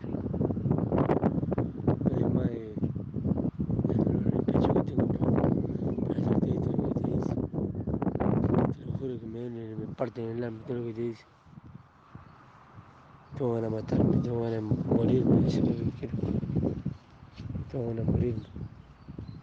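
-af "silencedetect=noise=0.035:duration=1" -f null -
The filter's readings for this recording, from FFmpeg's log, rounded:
silence_start: 11.11
silence_end: 13.38 | silence_duration: 2.27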